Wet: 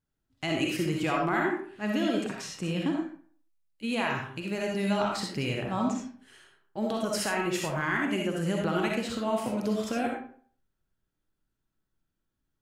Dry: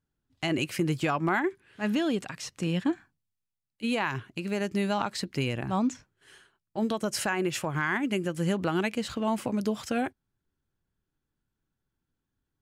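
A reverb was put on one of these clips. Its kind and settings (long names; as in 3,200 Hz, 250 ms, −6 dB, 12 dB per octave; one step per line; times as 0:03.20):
comb and all-pass reverb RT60 0.5 s, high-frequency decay 0.65×, pre-delay 20 ms, DRR −1 dB
level −3 dB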